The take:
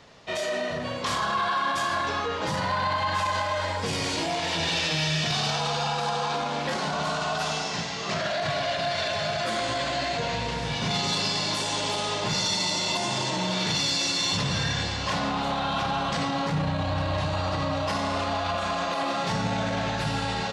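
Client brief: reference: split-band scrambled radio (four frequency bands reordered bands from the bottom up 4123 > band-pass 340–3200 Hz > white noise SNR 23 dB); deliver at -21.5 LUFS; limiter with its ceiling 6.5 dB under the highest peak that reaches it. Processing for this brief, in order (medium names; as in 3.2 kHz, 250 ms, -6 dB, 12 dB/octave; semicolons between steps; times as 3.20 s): peak limiter -24 dBFS; four frequency bands reordered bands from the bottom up 4123; band-pass 340–3200 Hz; white noise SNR 23 dB; trim +10 dB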